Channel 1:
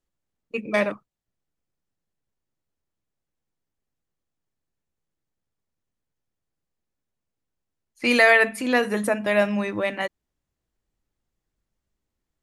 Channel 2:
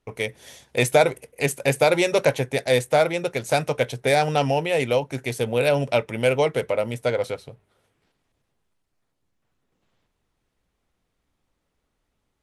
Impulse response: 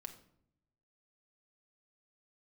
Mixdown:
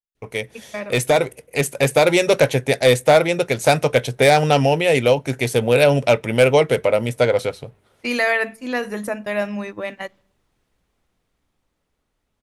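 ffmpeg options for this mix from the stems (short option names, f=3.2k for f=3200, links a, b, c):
-filter_complex "[0:a]agate=range=-18dB:threshold=-28dB:ratio=16:detection=peak,highshelf=f=9.1k:g=-7,aexciter=amount=1.5:drive=6.7:freq=5k,volume=-9dB,asplit=2[a][b];[b]volume=-13dB[c];[1:a]adynamicequalizer=threshold=0.0224:dfrequency=940:dqfactor=1.5:tfrequency=940:tqfactor=1.5:attack=5:release=100:ratio=0.375:range=2.5:mode=cutabove:tftype=bell,adelay=150,volume=1dB,asplit=2[d][e];[e]volume=-23dB[f];[2:a]atrim=start_sample=2205[g];[c][f]amix=inputs=2:normalize=0[h];[h][g]afir=irnorm=-1:irlink=0[i];[a][d][i]amix=inputs=3:normalize=0,asoftclip=type=hard:threshold=-10.5dB,dynaudnorm=f=350:g=11:m=5.5dB"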